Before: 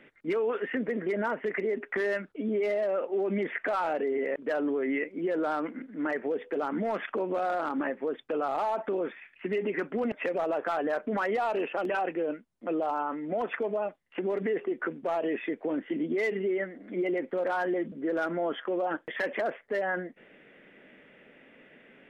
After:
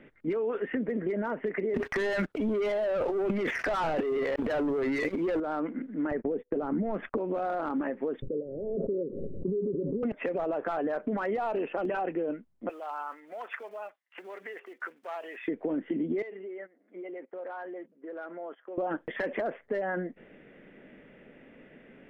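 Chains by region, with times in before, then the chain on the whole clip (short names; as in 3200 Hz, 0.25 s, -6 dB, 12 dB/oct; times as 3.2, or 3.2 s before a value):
1.74–5.4 tilt +2.5 dB/oct + sample leveller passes 3 + transient shaper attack -5 dB, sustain +12 dB
6.11–7.18 gate -39 dBFS, range -41 dB + tilt -2.5 dB/oct + upward compressor, threshold -29 dBFS
8.22–10.03 rippled Chebyshev low-pass 570 Hz, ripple 6 dB + backwards sustainer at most 33 dB/s
12.69–15.48 block floating point 7-bit + HPF 1200 Hz
16.22–18.78 gate -36 dBFS, range -17 dB + compressor 2:1, threshold -44 dBFS + BPF 470–3200 Hz
whole clip: tilt -2.5 dB/oct; compressor, threshold -27 dBFS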